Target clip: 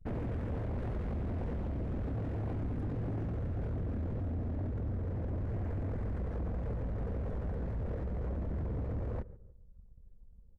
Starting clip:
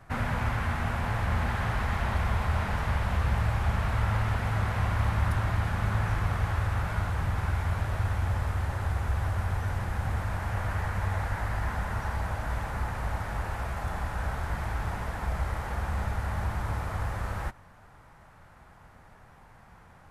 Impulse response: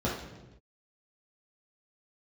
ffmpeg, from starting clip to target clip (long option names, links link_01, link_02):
-filter_complex "[0:a]anlmdn=0.398,firequalizer=gain_entry='entry(300,0);entry(470,8);entry(740,-17)':delay=0.05:min_phase=1,acompressor=threshold=-35dB:ratio=2.5,asplit=2[link_01][link_02];[link_02]adelay=293,lowpass=frequency=980:poles=1,volume=-18dB,asplit=2[link_03][link_04];[link_04]adelay=293,lowpass=frequency=980:poles=1,volume=0.37,asplit=2[link_05][link_06];[link_06]adelay=293,lowpass=frequency=980:poles=1,volume=0.37[link_07];[link_03][link_05][link_07]amix=inputs=3:normalize=0[link_08];[link_01][link_08]amix=inputs=2:normalize=0,atempo=1.9,aeval=exprs='0.0473*sin(PI/2*2.51*val(0)/0.0473)':channel_layout=same,volume=-5.5dB"